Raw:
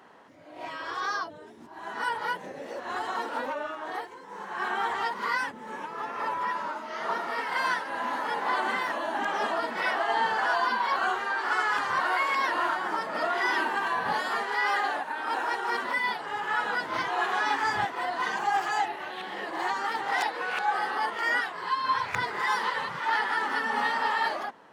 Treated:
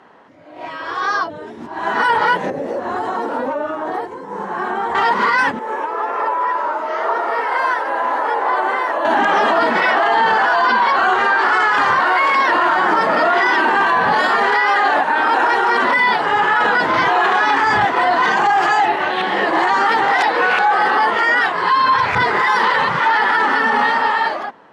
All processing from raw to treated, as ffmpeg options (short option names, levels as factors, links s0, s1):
-filter_complex "[0:a]asettb=1/sr,asplit=3[s0][s1][s2];[s0]atrim=end=2.504[s3];[s1]atrim=start=2.5:end=4.95,asetpts=PTS-STARTPTS,afade=t=in:d=0.004:c=qsin,afade=t=out:st=2.446:d=0.004:c=qsin,equalizer=f=2900:w=0.39:g=-12.5,acompressor=threshold=0.0126:ratio=2.5:attack=3.2:release=140:knee=1:detection=peak[s4];[s2]atrim=start=4.946[s5];[s3][s4]acrossfade=d=0.004:c1=hsin:c2=qsin[s6];[s6][s5]acrossfade=d=0.004:c1=qsin:c2=hsin,asettb=1/sr,asplit=3[s7][s8][s9];[s7]atrim=end=5.594[s10];[s8]atrim=start=5.59:end=9.05,asetpts=PTS-STARTPTS,afade=t=in:d=0.004:c=qsin,afade=t=out:st=3.456:d=0.004:c=qsin,highpass=f=360:w=0.5412,highpass=f=360:w=1.3066,equalizer=f=4000:t=o:w=2.7:g=-10,acompressor=threshold=0.0141:ratio=2:attack=3.2:release=140:knee=1:detection=peak[s11];[s9]atrim=start=9.046[s12];[s10][s11]acrossfade=d=0.004:c1=hsin:c2=qsin[s13];[s13][s12]acrossfade=d=0.004:c1=qsin:c2=hsin,aemphasis=mode=reproduction:type=50fm,dynaudnorm=f=260:g=11:m=4.22,alimiter=limit=0.2:level=0:latency=1:release=20,volume=2.24"